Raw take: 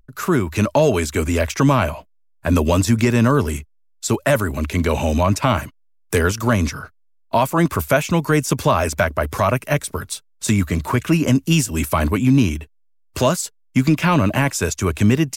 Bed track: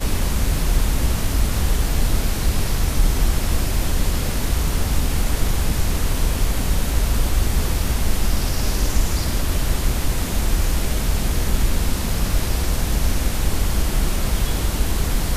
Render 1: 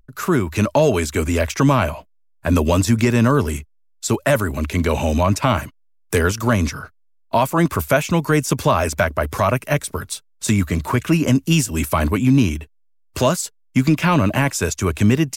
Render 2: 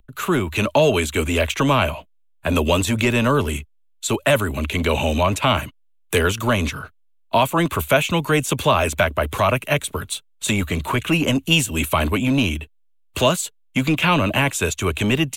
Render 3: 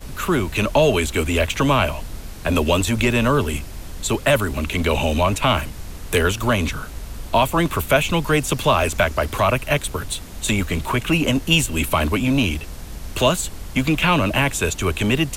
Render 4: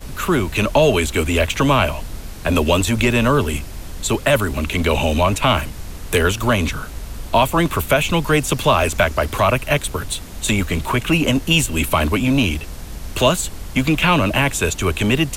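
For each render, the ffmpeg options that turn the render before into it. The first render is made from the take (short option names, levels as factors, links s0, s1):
-af anull
-filter_complex "[0:a]acrossover=split=320|450|4200[s0][s1][s2][s3];[s0]asoftclip=type=tanh:threshold=0.112[s4];[s2]aexciter=amount=4.4:drive=1.1:freq=2600[s5];[s4][s1][s5][s3]amix=inputs=4:normalize=0"
-filter_complex "[1:a]volume=0.211[s0];[0:a][s0]amix=inputs=2:normalize=0"
-af "volume=1.26,alimiter=limit=0.708:level=0:latency=1"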